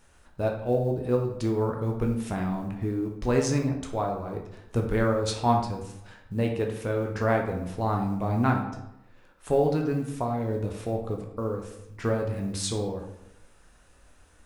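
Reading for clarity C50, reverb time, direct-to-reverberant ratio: 6.0 dB, 0.85 s, 1.0 dB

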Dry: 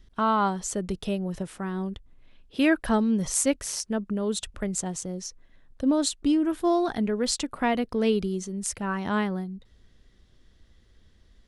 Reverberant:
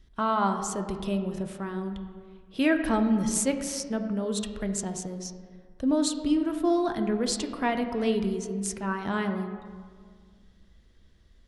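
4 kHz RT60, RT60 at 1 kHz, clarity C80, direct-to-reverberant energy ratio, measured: 1.1 s, 1.8 s, 9.0 dB, 5.5 dB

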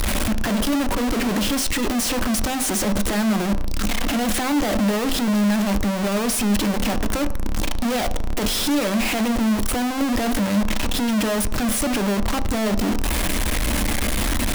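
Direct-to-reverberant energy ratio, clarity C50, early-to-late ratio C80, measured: 10.0 dB, 15.5 dB, 18.0 dB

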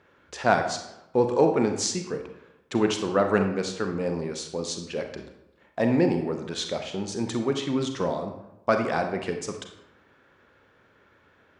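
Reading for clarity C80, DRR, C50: 9.5 dB, 5.0 dB, 7.0 dB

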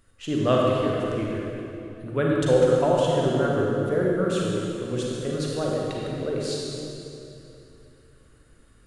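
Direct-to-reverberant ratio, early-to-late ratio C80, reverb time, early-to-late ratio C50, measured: -3.5 dB, -1.0 dB, 2.9 s, -2.5 dB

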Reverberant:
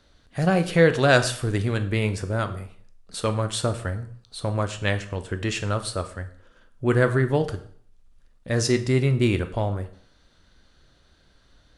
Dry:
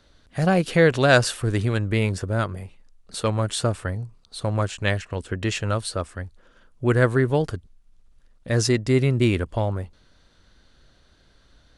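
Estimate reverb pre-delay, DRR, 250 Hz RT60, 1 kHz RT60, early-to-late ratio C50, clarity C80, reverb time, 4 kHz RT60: 7 ms, 8.5 dB, 0.50 s, 0.55 s, 13.5 dB, 17.0 dB, 0.55 s, 0.50 s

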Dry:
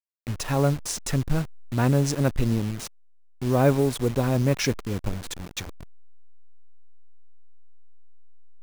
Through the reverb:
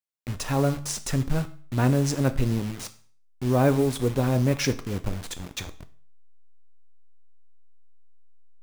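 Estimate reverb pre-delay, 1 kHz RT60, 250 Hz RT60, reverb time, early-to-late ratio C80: 6 ms, 0.45 s, 0.45 s, 0.45 s, 20.0 dB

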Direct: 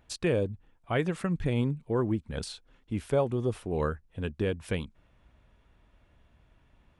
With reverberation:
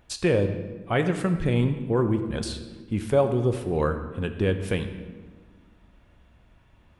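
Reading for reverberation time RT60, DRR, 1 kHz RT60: 1.5 s, 7.0 dB, 1.3 s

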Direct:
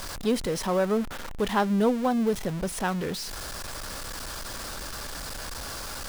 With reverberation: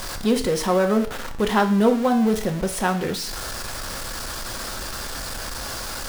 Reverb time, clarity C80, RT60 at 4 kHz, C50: 0.50 s, 15.0 dB, 0.50 s, 11.5 dB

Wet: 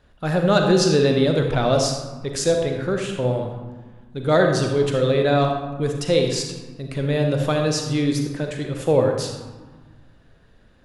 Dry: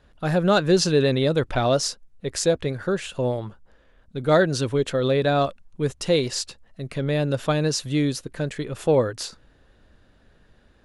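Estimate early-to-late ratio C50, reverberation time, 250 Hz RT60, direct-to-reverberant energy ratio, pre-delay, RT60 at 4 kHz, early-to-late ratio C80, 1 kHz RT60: 4.0 dB, 1.5 s, 2.0 s, 3.0 dB, 38 ms, 0.75 s, 6.0 dB, 1.6 s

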